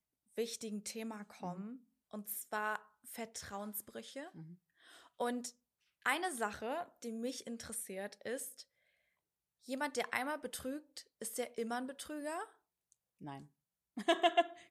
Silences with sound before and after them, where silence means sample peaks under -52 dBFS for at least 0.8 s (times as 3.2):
8.62–9.65